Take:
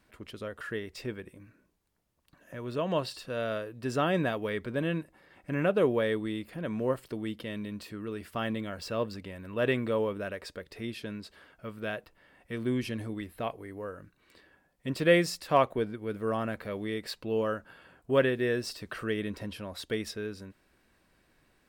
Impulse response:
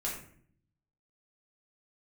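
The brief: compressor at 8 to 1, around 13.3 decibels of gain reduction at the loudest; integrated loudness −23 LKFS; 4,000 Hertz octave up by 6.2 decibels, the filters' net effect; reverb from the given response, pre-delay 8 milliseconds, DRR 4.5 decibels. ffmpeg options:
-filter_complex "[0:a]equalizer=frequency=4000:width_type=o:gain=8,acompressor=threshold=-31dB:ratio=8,asplit=2[link_01][link_02];[1:a]atrim=start_sample=2205,adelay=8[link_03];[link_02][link_03]afir=irnorm=-1:irlink=0,volume=-7.5dB[link_04];[link_01][link_04]amix=inputs=2:normalize=0,volume=13dB"

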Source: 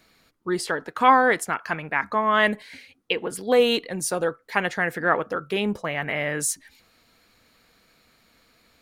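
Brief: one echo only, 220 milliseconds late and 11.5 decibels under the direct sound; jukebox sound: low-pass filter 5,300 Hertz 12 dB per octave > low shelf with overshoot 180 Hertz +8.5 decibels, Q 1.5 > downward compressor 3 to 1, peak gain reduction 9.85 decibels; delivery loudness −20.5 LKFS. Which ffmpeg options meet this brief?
ffmpeg -i in.wav -af "lowpass=5300,lowshelf=frequency=180:width_type=q:width=1.5:gain=8.5,aecho=1:1:220:0.266,acompressor=threshold=-24dB:ratio=3,volume=8dB" out.wav

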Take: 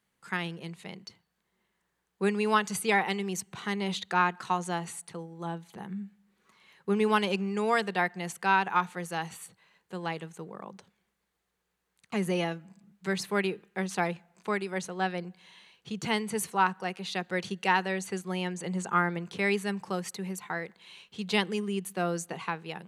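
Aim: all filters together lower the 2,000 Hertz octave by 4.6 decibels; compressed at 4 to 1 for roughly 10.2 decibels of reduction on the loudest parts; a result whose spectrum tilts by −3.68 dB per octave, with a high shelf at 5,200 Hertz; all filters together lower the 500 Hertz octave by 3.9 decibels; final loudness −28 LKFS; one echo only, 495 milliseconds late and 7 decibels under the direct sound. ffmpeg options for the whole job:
ffmpeg -i in.wav -af "equalizer=frequency=500:width_type=o:gain=-5,equalizer=frequency=2000:width_type=o:gain=-7,highshelf=frequency=5200:gain=8.5,acompressor=threshold=-34dB:ratio=4,aecho=1:1:495:0.447,volume=10dB" out.wav

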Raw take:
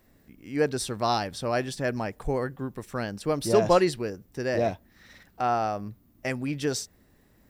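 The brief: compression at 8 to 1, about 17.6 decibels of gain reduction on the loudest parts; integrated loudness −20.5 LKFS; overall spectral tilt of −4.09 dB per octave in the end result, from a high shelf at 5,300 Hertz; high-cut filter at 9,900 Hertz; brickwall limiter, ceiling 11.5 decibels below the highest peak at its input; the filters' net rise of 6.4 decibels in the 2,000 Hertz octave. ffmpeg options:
ffmpeg -i in.wav -af "lowpass=9900,equalizer=frequency=2000:width_type=o:gain=7.5,highshelf=frequency=5300:gain=4,acompressor=threshold=-33dB:ratio=8,volume=21.5dB,alimiter=limit=-10dB:level=0:latency=1" out.wav

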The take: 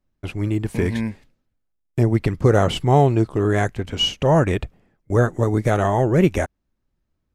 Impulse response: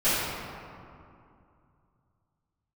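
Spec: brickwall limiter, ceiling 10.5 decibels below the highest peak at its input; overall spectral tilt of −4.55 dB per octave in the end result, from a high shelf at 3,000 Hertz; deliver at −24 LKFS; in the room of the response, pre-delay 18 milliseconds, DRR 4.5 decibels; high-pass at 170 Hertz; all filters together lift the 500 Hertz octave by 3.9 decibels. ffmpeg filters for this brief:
-filter_complex "[0:a]highpass=170,equalizer=frequency=500:width_type=o:gain=5,highshelf=frequency=3000:gain=3,alimiter=limit=-11.5dB:level=0:latency=1,asplit=2[link_01][link_02];[1:a]atrim=start_sample=2205,adelay=18[link_03];[link_02][link_03]afir=irnorm=-1:irlink=0,volume=-20.5dB[link_04];[link_01][link_04]amix=inputs=2:normalize=0,volume=-2dB"

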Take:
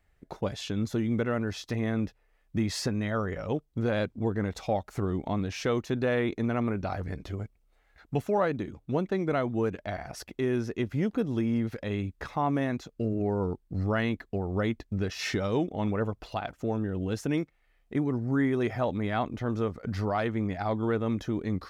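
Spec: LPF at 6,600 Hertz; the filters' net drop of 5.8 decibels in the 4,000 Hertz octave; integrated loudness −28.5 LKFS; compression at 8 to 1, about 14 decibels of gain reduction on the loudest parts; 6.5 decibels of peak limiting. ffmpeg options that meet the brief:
ffmpeg -i in.wav -af "lowpass=6600,equalizer=frequency=4000:width_type=o:gain=-7,acompressor=threshold=-38dB:ratio=8,volume=15.5dB,alimiter=limit=-18dB:level=0:latency=1" out.wav

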